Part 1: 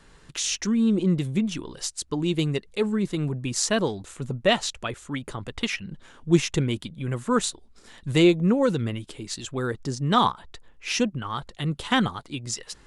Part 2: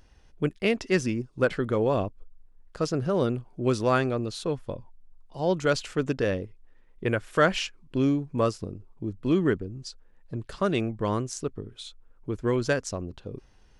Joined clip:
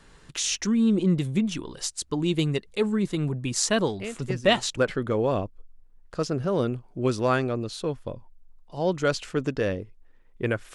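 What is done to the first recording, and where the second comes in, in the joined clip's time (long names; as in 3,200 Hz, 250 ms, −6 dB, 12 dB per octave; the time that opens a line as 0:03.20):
part 1
0:03.89: mix in part 2 from 0:00.51 0.88 s −10.5 dB
0:04.77: continue with part 2 from 0:01.39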